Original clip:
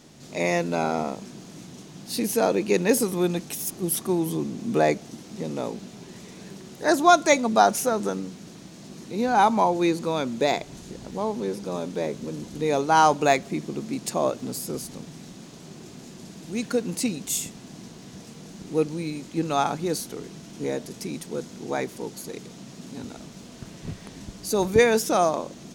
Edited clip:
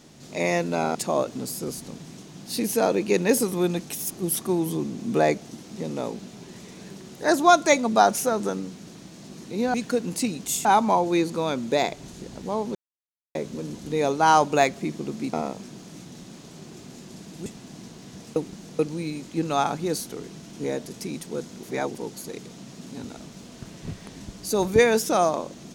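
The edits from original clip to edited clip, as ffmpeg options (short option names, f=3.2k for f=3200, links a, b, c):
-filter_complex "[0:a]asplit=14[a][b][c][d][e][f][g][h][i][j][k][l][m][n];[a]atrim=end=0.952[o];[b]atrim=start=14.018:end=15.242[p];[c]atrim=start=1.768:end=9.342[q];[d]atrim=start=16.548:end=17.462[r];[e]atrim=start=9.338:end=11.44,asetpts=PTS-STARTPTS,afade=t=out:st=2.098:d=0.004:c=hsin[s];[f]atrim=start=11.44:end=12.04,asetpts=PTS-STARTPTS,volume=0[t];[g]atrim=start=12.04:end=14.022,asetpts=PTS-STARTPTS,afade=t=in:d=0.004:c=hsin[u];[h]atrim=start=0.948:end=1.772[v];[i]atrim=start=15.238:end=16.552[w];[j]atrim=start=17.458:end=18.362[x];[k]atrim=start=18.358:end=18.792,asetpts=PTS-STARTPTS,areverse[y];[l]atrim=start=18.788:end=21.632[z];[m]atrim=start=21.628:end=21.952,asetpts=PTS-STARTPTS,areverse[aa];[n]atrim=start=21.948[ab];[o][p]acrossfade=d=0.004:c1=hsin:c2=hsin[ac];[ac][q]acrossfade=d=0.004:c1=hsin:c2=hsin[ad];[ad][r]acrossfade=d=0.004:c1=hsin:c2=hsin[ae];[s][t][u]concat=n=3:v=0:a=1[af];[ae][af]acrossfade=d=0.004:c1=hsin:c2=hsin[ag];[ag][v]acrossfade=d=0.004:c1=hsin:c2=hsin[ah];[ah][w]acrossfade=d=0.004:c1=hsin:c2=hsin[ai];[ai][x]acrossfade=d=0.004:c1=hsin:c2=hsin[aj];[aj][y]acrossfade=d=0.004:c1=hsin:c2=hsin[ak];[ak][z]acrossfade=d=0.004:c1=hsin:c2=hsin[al];[al][aa]acrossfade=d=0.004:c1=hsin:c2=hsin[am];[am][ab]acrossfade=d=0.004:c1=hsin:c2=hsin"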